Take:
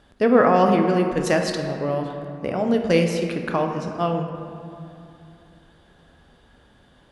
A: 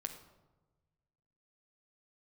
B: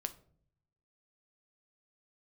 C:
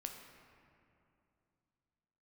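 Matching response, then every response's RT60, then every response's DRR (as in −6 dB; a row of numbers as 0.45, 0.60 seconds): C; 1.2 s, non-exponential decay, 2.7 s; 4.5, 8.5, 3.0 decibels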